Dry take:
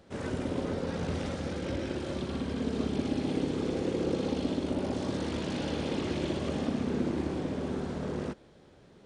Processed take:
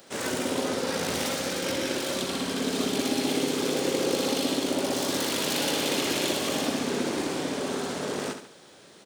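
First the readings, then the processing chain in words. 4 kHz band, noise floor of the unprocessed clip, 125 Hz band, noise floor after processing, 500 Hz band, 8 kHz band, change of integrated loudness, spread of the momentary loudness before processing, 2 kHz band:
+14.0 dB, −57 dBFS, −4.5 dB, −52 dBFS, +5.0 dB, +19.0 dB, +5.5 dB, 4 LU, +10.5 dB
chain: stylus tracing distortion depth 0.048 ms
high-pass filter 100 Hz
RIAA equalisation recording
repeating echo 71 ms, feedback 41%, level −8.5 dB
level +7.5 dB

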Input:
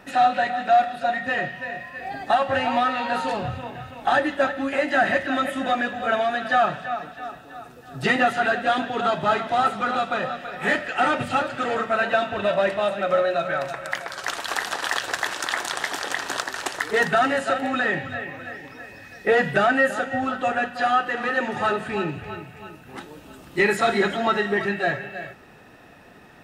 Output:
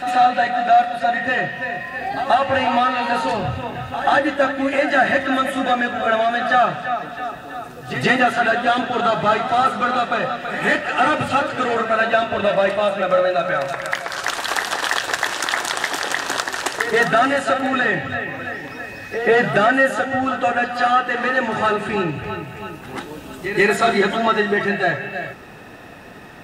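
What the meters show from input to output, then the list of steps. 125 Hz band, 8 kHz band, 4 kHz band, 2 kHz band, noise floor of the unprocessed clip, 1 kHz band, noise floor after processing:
+5.0 dB, +5.0 dB, +5.0 dB, +4.5 dB, −47 dBFS, +4.5 dB, −36 dBFS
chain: backwards echo 133 ms −12.5 dB
in parallel at +0.5 dB: downward compressor, threshold −34 dBFS, peak gain reduction 19 dB
on the sum: level +2.5 dB

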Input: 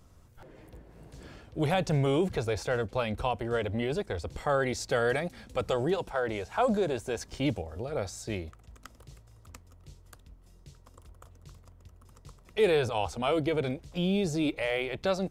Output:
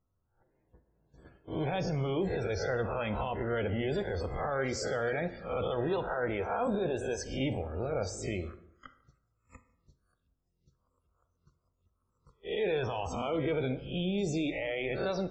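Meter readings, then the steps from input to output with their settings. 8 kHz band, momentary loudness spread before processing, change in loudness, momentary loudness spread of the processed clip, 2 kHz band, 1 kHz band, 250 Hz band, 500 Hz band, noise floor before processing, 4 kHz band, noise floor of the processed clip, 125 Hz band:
−2.5 dB, 10 LU, −3.0 dB, 4 LU, −3.0 dB, −3.5 dB, −3.0 dB, −3.0 dB, −56 dBFS, −4.5 dB, −79 dBFS, −2.5 dB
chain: peak hold with a rise ahead of every peak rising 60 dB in 0.46 s
brickwall limiter −24 dBFS, peak gain reduction 11 dB
noise gate −43 dBFS, range −24 dB
spectral peaks only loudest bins 64
dense smooth reverb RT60 0.76 s, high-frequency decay 0.6×, DRR 9.5 dB

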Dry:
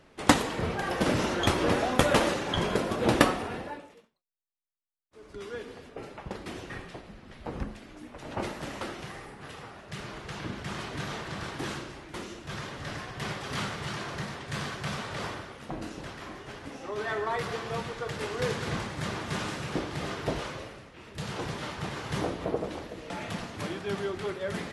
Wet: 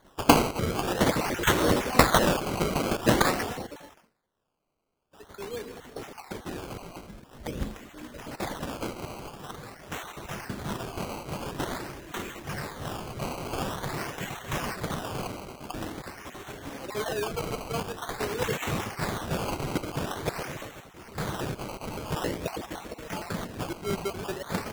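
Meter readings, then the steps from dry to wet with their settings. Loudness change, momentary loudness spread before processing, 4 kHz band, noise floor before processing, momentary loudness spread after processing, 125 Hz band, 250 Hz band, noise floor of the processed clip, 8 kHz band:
+2.0 dB, 17 LU, +1.0 dB, −58 dBFS, 18 LU, +1.5 dB, +1.5 dB, −58 dBFS, +4.0 dB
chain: time-frequency cells dropped at random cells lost 37%
high shelf with overshoot 6,100 Hz +13.5 dB, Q 3
sample-and-hold swept by an LFO 17×, swing 100% 0.47 Hz
level +2.5 dB

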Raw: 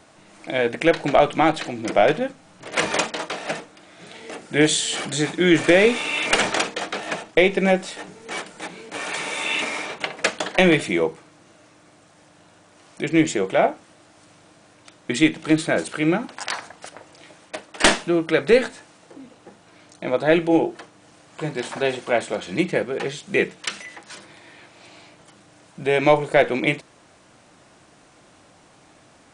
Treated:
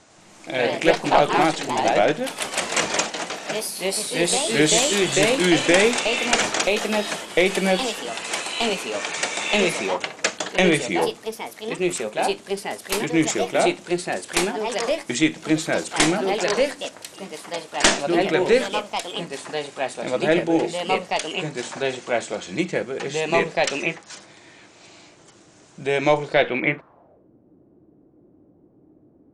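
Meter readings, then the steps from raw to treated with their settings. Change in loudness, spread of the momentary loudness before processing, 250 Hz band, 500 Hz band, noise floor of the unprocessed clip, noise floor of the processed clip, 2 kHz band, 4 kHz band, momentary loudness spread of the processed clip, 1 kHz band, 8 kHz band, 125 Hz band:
−0.5 dB, 15 LU, −1.0 dB, 0.0 dB, −53 dBFS, −54 dBFS, 0.0 dB, +3.0 dB, 11 LU, +2.0 dB, +5.5 dB, −1.5 dB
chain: low-pass filter sweep 7,000 Hz → 350 Hz, 0:26.18–0:27.30
delay with pitch and tempo change per echo 102 ms, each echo +2 semitones, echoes 3
level −2.5 dB

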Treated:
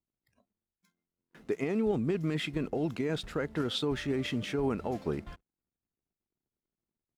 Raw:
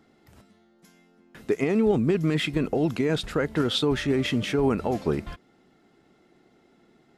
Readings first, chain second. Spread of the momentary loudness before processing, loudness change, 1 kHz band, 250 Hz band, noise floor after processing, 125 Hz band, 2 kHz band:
7 LU, −7.5 dB, −7.5 dB, −7.5 dB, below −85 dBFS, −7.5 dB, −7.5 dB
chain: slack as between gear wheels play −50 dBFS
noise reduction from a noise print of the clip's start 19 dB
level −7.5 dB

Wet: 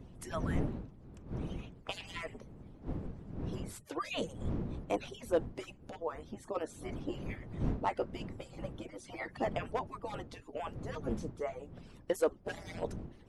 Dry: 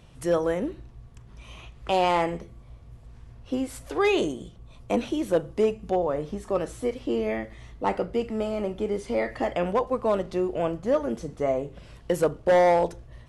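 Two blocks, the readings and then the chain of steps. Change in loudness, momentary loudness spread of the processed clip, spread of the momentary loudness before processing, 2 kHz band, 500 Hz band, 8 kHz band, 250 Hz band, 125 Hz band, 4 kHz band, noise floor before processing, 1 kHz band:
−13.0 dB, 12 LU, 11 LU, −10.5 dB, −14.0 dB, −7.5 dB, −11.0 dB, −3.0 dB, −9.0 dB, −49 dBFS, −13.0 dB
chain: harmonic-percussive split with one part muted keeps percussive
wind on the microphone 210 Hz −36 dBFS
level −6.5 dB

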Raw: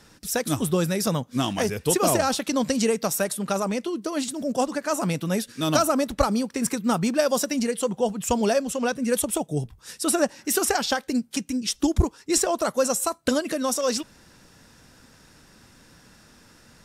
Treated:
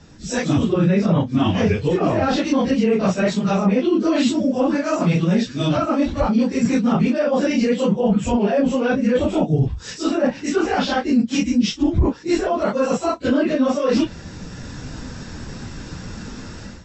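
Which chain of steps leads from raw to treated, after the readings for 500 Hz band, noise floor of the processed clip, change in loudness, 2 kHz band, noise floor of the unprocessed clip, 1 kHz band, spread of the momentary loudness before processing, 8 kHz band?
+4.5 dB, −37 dBFS, +5.5 dB, +4.0 dB, −54 dBFS, +2.5 dB, 5 LU, −8.5 dB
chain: random phases in long frames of 100 ms
dynamic equaliser 2,600 Hz, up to +5 dB, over −46 dBFS, Q 1.5
automatic gain control gain up to 13 dB
treble cut that deepens with the level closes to 2,400 Hz, closed at −10 dBFS
linear-phase brick-wall low-pass 8,000 Hz
reversed playback
downward compressor 6 to 1, threshold −21 dBFS, peak gain reduction 13.5 dB
reversed playback
low-shelf EQ 360 Hz +11 dB
boost into a limiter +8.5 dB
level −7.5 dB

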